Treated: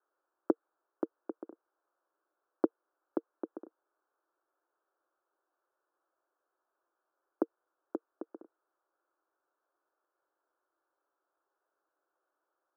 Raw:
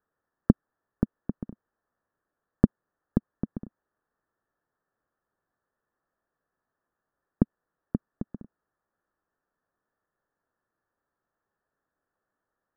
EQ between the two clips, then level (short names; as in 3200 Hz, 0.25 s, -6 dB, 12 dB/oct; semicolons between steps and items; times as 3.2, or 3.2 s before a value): Chebyshev band-pass 320–1500 Hz, order 4; notch 460 Hz, Q 12; +2.5 dB